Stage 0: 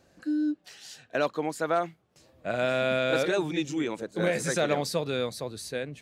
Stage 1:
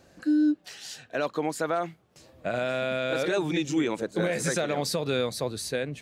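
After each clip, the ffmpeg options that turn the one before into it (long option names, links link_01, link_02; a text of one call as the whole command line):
ffmpeg -i in.wav -af "alimiter=limit=-22dB:level=0:latency=1:release=140,volume=5dB" out.wav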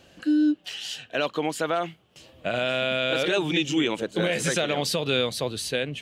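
ffmpeg -i in.wav -af "equalizer=frequency=3000:width_type=o:width=0.46:gain=14.5,volume=1.5dB" out.wav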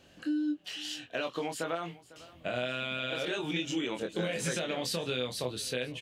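ffmpeg -i in.wav -filter_complex "[0:a]acompressor=threshold=-24dB:ratio=6,asplit=2[link_01][link_02];[link_02]adelay=24,volume=-5dB[link_03];[link_01][link_03]amix=inputs=2:normalize=0,aecho=1:1:500:0.1,volume=-6dB" out.wav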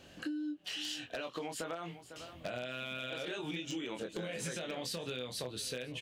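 ffmpeg -i in.wav -af "acompressor=threshold=-39dB:ratio=10,aeval=exprs='0.0237*(abs(mod(val(0)/0.0237+3,4)-2)-1)':channel_layout=same,volume=3dB" out.wav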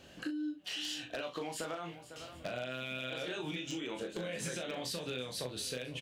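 ffmpeg -i in.wav -filter_complex "[0:a]asplit=2[link_01][link_02];[link_02]adelay=39,volume=-8dB[link_03];[link_01][link_03]amix=inputs=2:normalize=0,aecho=1:1:789:0.075" out.wav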